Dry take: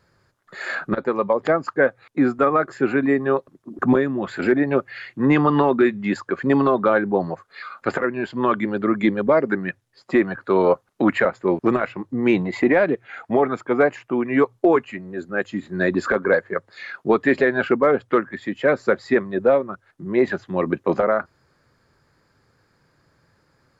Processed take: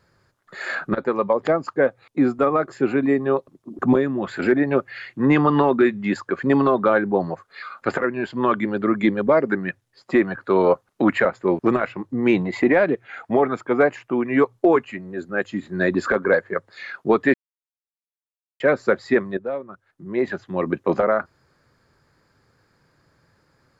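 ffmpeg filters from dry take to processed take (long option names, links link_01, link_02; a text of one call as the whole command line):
ffmpeg -i in.wav -filter_complex "[0:a]asettb=1/sr,asplit=3[link_01][link_02][link_03];[link_01]atrim=end=1.474[link_04];[link_02]atrim=start=1.47:end=4.04,asetpts=PTS-STARTPTS,afade=type=in:duration=0.004:curve=qsin,afade=type=out:start_time=2.566:duration=0.004:curve=qsin,equalizer=frequency=1600:width_type=o:width=0.77:gain=-5.5[link_05];[link_03]atrim=start=4.036[link_06];[link_04][link_05]acrossfade=duration=0.004:curve1=hsin:curve2=qsin[link_07];[link_07][link_06]acrossfade=duration=0.004:curve1=qsin:curve2=hsin,asplit=4[link_08][link_09][link_10][link_11];[link_08]atrim=end=17.34,asetpts=PTS-STARTPTS,afade=type=out:start_time=17.336:duration=0.004:curve=hsin[link_12];[link_09]atrim=start=17.34:end=18.6,asetpts=PTS-STARTPTS,volume=0[link_13];[link_10]atrim=start=18.6:end=19.37,asetpts=PTS-STARTPTS,afade=type=in:duration=0.004:curve=hsin,afade=type=out:start_time=0.766:duration=0.004:curve=hsin:silence=0.211349[link_14];[link_11]atrim=start=19.37,asetpts=PTS-STARTPTS,afade=type=in:duration=1.56:silence=0.211349[link_15];[link_12][link_13][link_14][link_15]concat=n=4:v=0:a=1" out.wav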